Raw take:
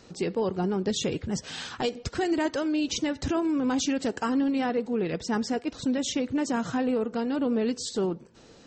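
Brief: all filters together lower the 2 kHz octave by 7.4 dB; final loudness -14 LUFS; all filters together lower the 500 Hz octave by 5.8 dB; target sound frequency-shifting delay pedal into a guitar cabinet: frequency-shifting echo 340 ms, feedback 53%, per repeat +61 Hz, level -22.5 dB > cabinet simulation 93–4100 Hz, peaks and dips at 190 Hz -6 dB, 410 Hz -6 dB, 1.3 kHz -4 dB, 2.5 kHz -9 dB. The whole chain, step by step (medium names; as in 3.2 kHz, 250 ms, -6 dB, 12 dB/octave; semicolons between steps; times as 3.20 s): peaking EQ 500 Hz -3.5 dB; peaking EQ 2 kHz -6 dB; frequency-shifting echo 340 ms, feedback 53%, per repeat +61 Hz, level -22.5 dB; cabinet simulation 93–4100 Hz, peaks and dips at 190 Hz -6 dB, 410 Hz -6 dB, 1.3 kHz -4 dB, 2.5 kHz -9 dB; trim +18 dB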